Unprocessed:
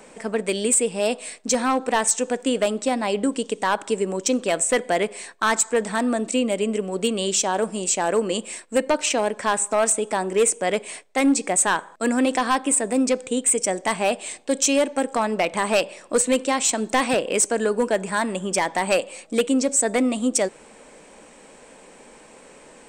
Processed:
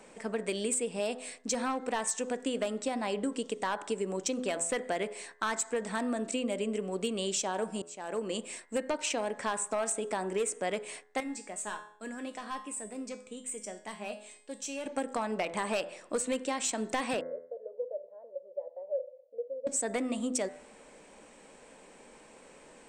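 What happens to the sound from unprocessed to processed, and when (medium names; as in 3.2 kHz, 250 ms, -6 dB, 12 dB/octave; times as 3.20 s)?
7.82–8.47 s: fade in
11.20–14.86 s: feedback comb 210 Hz, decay 0.45 s, mix 80%
17.21–19.67 s: Butterworth band-pass 540 Hz, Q 5.8
whole clip: treble shelf 11 kHz -6 dB; de-hum 84.2 Hz, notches 25; compression, threshold -21 dBFS; trim -7 dB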